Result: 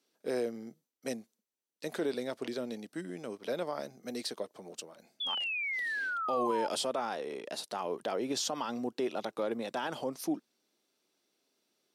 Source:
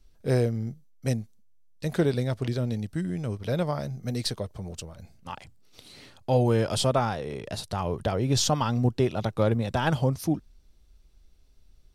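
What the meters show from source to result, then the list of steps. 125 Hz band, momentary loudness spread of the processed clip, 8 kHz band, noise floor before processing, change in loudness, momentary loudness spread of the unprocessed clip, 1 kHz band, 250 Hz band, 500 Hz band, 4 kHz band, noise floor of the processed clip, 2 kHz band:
-27.5 dB, 11 LU, -7.0 dB, -57 dBFS, -8.0 dB, 15 LU, -4.5 dB, -9.0 dB, -6.5 dB, -3.5 dB, -85 dBFS, +1.5 dB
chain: HPF 260 Hz 24 dB/oct; limiter -20.5 dBFS, peak gain reduction 9.5 dB; painted sound fall, 5.2–6.68, 850–3500 Hz -31 dBFS; gain -3.5 dB

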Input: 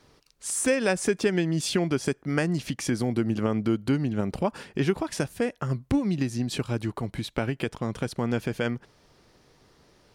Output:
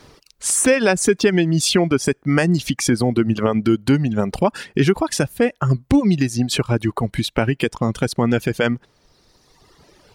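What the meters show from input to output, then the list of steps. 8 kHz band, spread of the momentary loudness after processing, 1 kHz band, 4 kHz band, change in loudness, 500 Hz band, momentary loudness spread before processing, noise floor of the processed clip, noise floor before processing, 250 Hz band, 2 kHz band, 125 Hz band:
+10.5 dB, 6 LU, +9.5 dB, +10.5 dB, +9.0 dB, +8.5 dB, 6 LU, -60 dBFS, -62 dBFS, +8.5 dB, +9.0 dB, +8.5 dB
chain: reverb removal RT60 1.7 s; in parallel at +1 dB: limiter -21.5 dBFS, peak gain reduction 11.5 dB; on the sum: gain +5.5 dB

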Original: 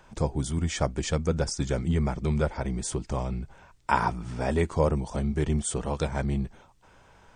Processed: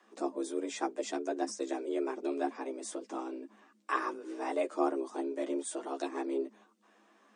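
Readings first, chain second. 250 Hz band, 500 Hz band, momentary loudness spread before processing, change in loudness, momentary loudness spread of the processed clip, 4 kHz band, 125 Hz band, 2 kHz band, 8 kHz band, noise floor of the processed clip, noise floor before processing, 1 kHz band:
-5.5 dB, -4.5 dB, 6 LU, -7.5 dB, 8 LU, -9.5 dB, under -40 dB, -7.0 dB, -9.0 dB, -67 dBFS, -57 dBFS, -5.5 dB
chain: chorus voices 6, 0.93 Hz, delay 11 ms, depth 4.3 ms; frequency shift +200 Hz; ladder high-pass 270 Hz, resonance 25%

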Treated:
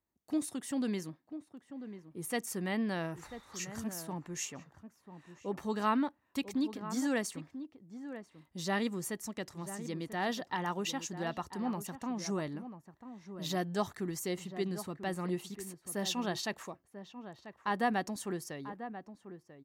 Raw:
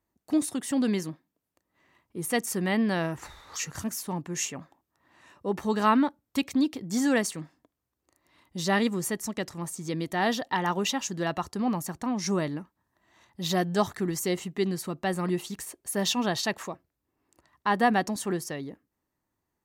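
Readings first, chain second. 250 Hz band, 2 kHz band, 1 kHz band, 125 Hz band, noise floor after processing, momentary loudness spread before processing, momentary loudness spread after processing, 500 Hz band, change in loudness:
-7.5 dB, -8.0 dB, -8.0 dB, -7.5 dB, -72 dBFS, 12 LU, 15 LU, -7.5 dB, -8.0 dB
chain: outdoor echo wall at 170 m, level -11 dB; gain -8 dB

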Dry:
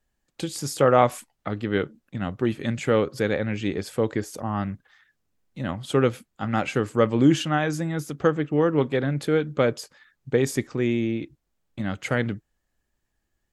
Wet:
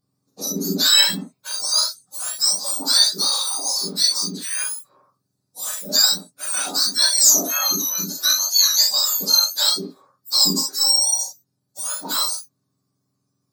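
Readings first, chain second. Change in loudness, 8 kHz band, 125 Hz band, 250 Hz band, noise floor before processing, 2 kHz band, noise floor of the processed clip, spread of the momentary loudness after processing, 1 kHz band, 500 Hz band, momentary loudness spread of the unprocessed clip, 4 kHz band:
+8.0 dB, +23.0 dB, -13.0 dB, -8.0 dB, -77 dBFS, 0.0 dB, -74 dBFS, 14 LU, -4.5 dB, -13.5 dB, 14 LU, +22.0 dB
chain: spectrum mirrored in octaves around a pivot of 1400 Hz; resonant high shelf 3600 Hz +7.5 dB, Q 3; non-linear reverb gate 90 ms flat, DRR -2.5 dB; gain -2.5 dB

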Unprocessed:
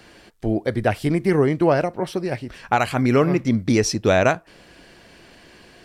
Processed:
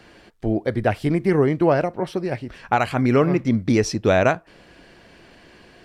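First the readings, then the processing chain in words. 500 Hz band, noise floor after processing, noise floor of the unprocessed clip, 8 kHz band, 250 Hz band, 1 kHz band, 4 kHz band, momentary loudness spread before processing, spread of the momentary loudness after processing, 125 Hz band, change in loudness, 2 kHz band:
0.0 dB, -51 dBFS, -50 dBFS, -5.0 dB, 0.0 dB, -0.5 dB, -3.5 dB, 9 LU, 9 LU, 0.0 dB, 0.0 dB, -1.0 dB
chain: high shelf 4800 Hz -8 dB

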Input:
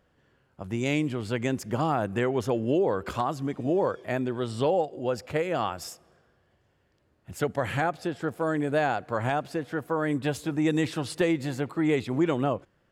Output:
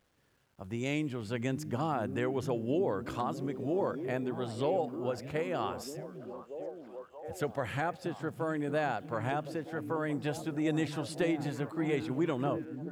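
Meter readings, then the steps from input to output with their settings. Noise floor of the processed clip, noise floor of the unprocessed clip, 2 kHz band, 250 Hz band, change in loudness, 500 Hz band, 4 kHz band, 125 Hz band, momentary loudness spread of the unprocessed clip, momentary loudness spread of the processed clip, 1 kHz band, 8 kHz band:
-59 dBFS, -69 dBFS, -6.5 dB, -5.5 dB, -6.0 dB, -6.0 dB, -6.5 dB, -5.5 dB, 6 LU, 11 LU, -6.0 dB, -6.5 dB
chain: bit-crush 11-bit; delay with a stepping band-pass 0.629 s, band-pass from 180 Hz, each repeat 0.7 oct, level -4 dB; gain -6.5 dB

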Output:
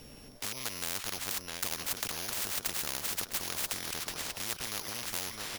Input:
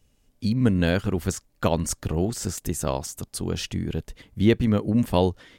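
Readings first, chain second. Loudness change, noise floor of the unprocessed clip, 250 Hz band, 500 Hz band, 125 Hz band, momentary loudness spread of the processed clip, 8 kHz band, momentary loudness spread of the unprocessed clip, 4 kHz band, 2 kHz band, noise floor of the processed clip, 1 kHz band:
-9.0 dB, -65 dBFS, -25.5 dB, -20.0 dB, -25.0 dB, 3 LU, -1.0 dB, 10 LU, 0.0 dB, -3.5 dB, -51 dBFS, -9.5 dB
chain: sample sorter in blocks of 8 samples; compressor 2.5:1, threshold -32 dBFS, peak gain reduction 13 dB; on a send: feedback echo 0.659 s, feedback 46%, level -14.5 dB; on the sum: spectral compressor 10:1; gain +2.5 dB

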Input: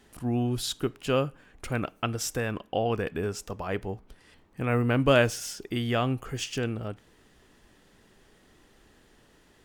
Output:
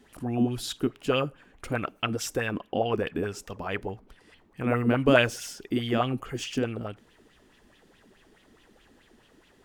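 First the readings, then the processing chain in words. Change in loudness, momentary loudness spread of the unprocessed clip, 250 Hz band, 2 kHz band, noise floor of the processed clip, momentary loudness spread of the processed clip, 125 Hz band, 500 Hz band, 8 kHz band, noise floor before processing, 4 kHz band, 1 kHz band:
+0.5 dB, 13 LU, +2.0 dB, +1.5 dB, -61 dBFS, 13 LU, -2.5 dB, +0.5 dB, -2.5 dB, -61 dBFS, +0.5 dB, +0.5 dB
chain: LFO bell 4.7 Hz 220–3300 Hz +12 dB; gain -3 dB

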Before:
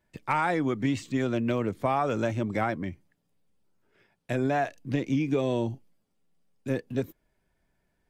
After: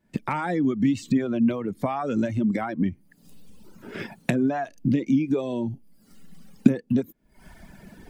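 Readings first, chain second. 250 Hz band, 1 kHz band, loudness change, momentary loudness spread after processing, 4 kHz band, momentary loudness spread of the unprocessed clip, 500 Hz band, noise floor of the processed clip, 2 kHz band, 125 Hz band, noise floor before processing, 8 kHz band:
+7.0 dB, -2.0 dB, +3.5 dB, 9 LU, -1.0 dB, 8 LU, -0.5 dB, -61 dBFS, -1.5 dB, +2.0 dB, -75 dBFS, n/a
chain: recorder AGC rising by 68 dB/s; reverb removal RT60 1.9 s; bell 220 Hz +12.5 dB 1.1 oct; gain -2 dB

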